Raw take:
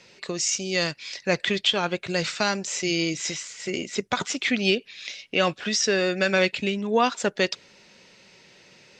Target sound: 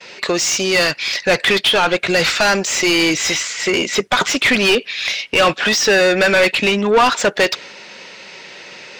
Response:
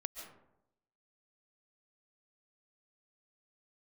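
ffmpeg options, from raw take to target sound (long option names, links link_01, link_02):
-filter_complex "[0:a]asplit=2[link_01][link_02];[link_02]highpass=frequency=720:poles=1,volume=25dB,asoftclip=type=tanh:threshold=-6.5dB[link_03];[link_01][link_03]amix=inputs=2:normalize=0,lowpass=frequency=2900:poles=1,volume=-6dB,agate=range=-33dB:threshold=-36dB:ratio=3:detection=peak,volume=2.5dB"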